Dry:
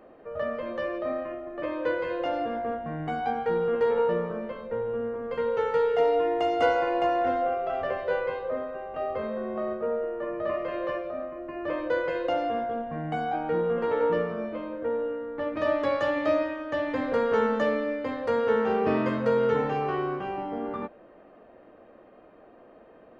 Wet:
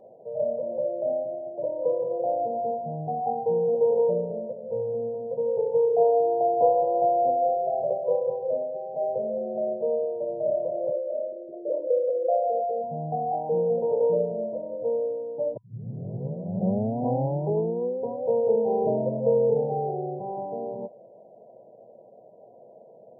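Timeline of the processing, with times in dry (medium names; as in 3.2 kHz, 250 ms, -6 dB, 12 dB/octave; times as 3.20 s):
4.11–5.61 s: distance through air 440 m
10.92–12.84 s: resonances exaggerated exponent 3
15.57 s: tape start 2.74 s
whole clip: FFT band-pass 100–980 Hz; comb 1.7 ms, depth 75%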